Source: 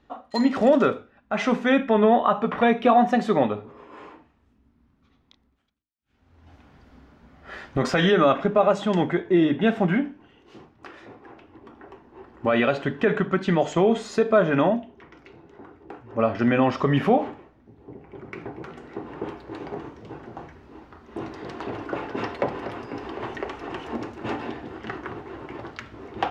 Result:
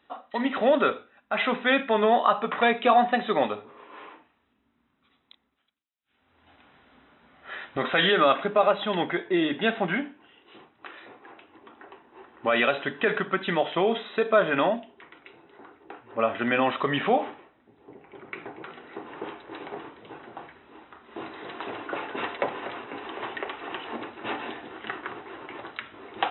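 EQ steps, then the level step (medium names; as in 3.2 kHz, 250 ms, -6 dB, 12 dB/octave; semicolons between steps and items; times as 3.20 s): brick-wall FIR low-pass 4 kHz; tilt EQ +2.5 dB/octave; bass shelf 150 Hz -9.5 dB; 0.0 dB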